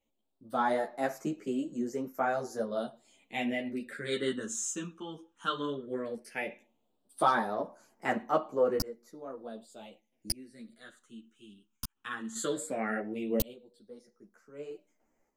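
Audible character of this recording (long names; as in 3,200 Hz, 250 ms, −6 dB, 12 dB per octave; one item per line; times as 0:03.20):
phaser sweep stages 8, 0.15 Hz, lowest notch 590–3,600 Hz
sample-and-hold tremolo 1.7 Hz
a shimmering, thickened sound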